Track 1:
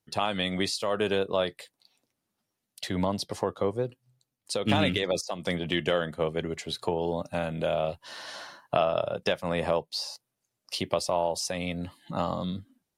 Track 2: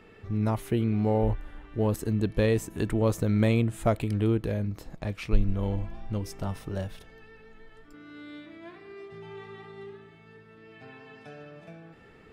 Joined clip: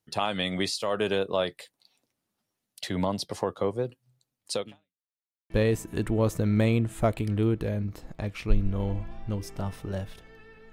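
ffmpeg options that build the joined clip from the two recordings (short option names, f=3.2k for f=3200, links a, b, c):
-filter_complex "[0:a]apad=whole_dur=10.72,atrim=end=10.72,asplit=2[a][b];[a]atrim=end=5.04,asetpts=PTS-STARTPTS,afade=t=out:st=4.6:d=0.44:c=exp[c];[b]atrim=start=5.04:end=5.5,asetpts=PTS-STARTPTS,volume=0[d];[1:a]atrim=start=2.33:end=7.55,asetpts=PTS-STARTPTS,afade=t=in:d=0.004:c=hsin[e];[c][d][e]concat=n=3:v=0:a=1"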